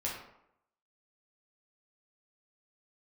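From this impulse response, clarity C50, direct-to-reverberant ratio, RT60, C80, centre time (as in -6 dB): 3.0 dB, -4.5 dB, 0.80 s, 6.5 dB, 44 ms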